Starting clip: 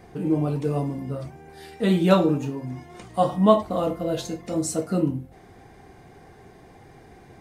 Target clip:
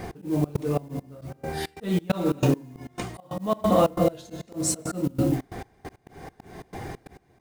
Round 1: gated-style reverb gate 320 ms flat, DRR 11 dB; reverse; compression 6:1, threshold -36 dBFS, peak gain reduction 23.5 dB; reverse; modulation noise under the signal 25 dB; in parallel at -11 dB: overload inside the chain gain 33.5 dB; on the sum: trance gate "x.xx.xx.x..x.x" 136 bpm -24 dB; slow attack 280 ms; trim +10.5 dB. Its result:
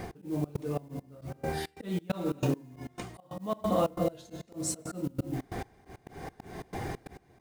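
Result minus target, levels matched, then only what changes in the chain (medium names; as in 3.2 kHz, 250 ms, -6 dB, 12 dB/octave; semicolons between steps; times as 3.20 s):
compression: peak gain reduction +8.5 dB
change: compression 6:1, threshold -26 dBFS, peak gain reduction 15 dB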